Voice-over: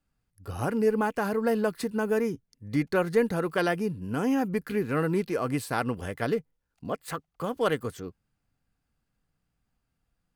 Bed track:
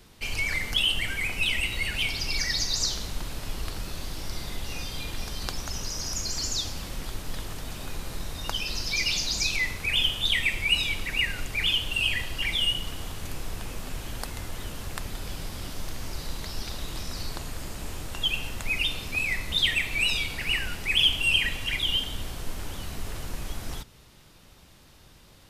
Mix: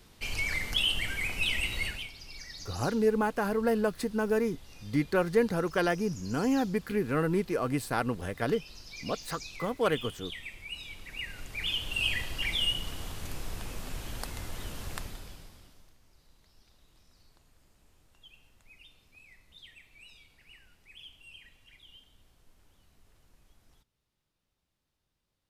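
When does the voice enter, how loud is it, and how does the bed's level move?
2.20 s, -1.5 dB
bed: 1.86 s -3.5 dB
2.11 s -17.5 dB
10.76 s -17.5 dB
12.05 s -3.5 dB
14.97 s -3.5 dB
16.00 s -29 dB

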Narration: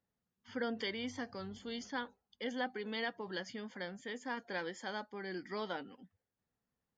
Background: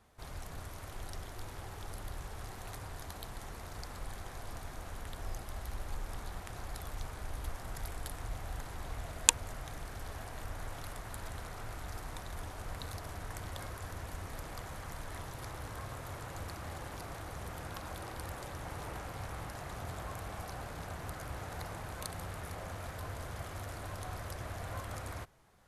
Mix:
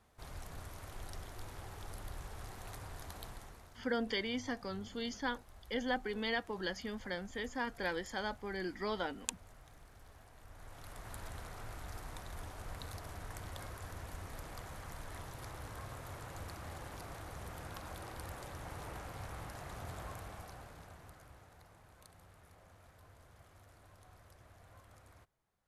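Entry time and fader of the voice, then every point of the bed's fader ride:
3.30 s, +2.5 dB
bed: 3.28 s -3 dB
3.80 s -15 dB
10.41 s -15 dB
11.09 s -3.5 dB
20.08 s -3.5 dB
21.60 s -18.5 dB

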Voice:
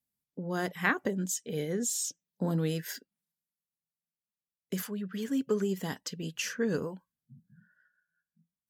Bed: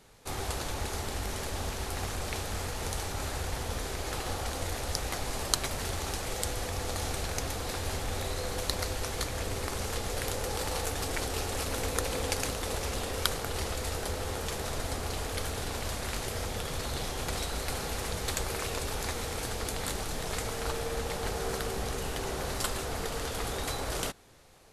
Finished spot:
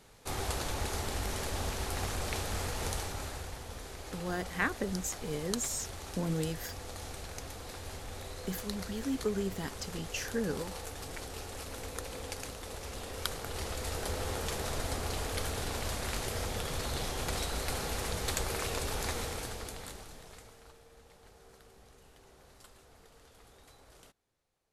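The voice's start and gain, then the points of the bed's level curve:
3.75 s, -3.5 dB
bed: 2.88 s -0.5 dB
3.61 s -9.5 dB
12.75 s -9.5 dB
14.19 s -1 dB
19.20 s -1 dB
20.80 s -24.5 dB

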